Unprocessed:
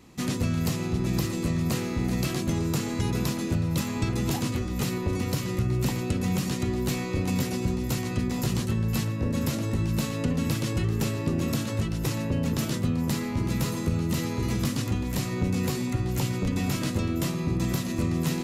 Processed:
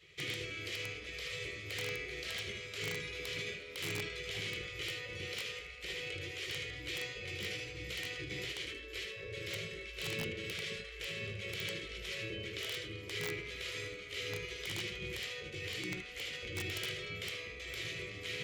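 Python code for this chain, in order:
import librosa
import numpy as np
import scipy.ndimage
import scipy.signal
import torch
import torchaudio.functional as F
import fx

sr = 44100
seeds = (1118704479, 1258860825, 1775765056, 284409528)

p1 = fx.over_compress(x, sr, threshold_db=-30.0, ratio=-0.5)
p2 = x + (p1 * 10.0 ** (-3.0 / 20.0))
p3 = fx.vowel_filter(p2, sr, vowel='i')
p4 = fx.spec_gate(p3, sr, threshold_db=-20, keep='weak')
p5 = fx.room_early_taps(p4, sr, ms=(20, 77), db=(-9.0, -4.5))
p6 = (np.mod(10.0 ** (37.0 / 20.0) * p5 + 1.0, 2.0) - 1.0) / 10.0 ** (37.0 / 20.0)
y = p6 * 10.0 ** (8.0 / 20.0)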